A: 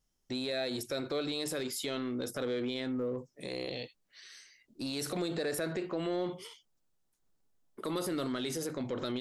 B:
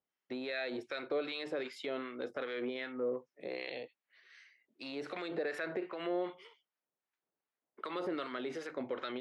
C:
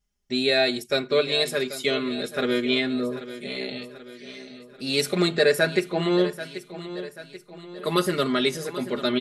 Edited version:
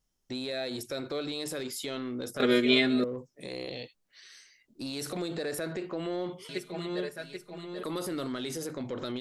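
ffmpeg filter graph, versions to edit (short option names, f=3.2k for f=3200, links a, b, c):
-filter_complex "[2:a]asplit=2[a][b];[0:a]asplit=3[c][d][e];[c]atrim=end=2.402[f];[a]atrim=start=2.398:end=3.042[g];[d]atrim=start=3.038:end=6.492[h];[b]atrim=start=6.488:end=7.832[i];[e]atrim=start=7.828[j];[f][g]acrossfade=d=0.004:c1=hsin:c2=hsin[k];[k][h]acrossfade=d=0.004:c1=hsin:c2=hsin[l];[l][i]acrossfade=d=0.004:c1=hsin:c2=hsin[m];[m][j]acrossfade=d=0.004:c1=hsin:c2=hsin"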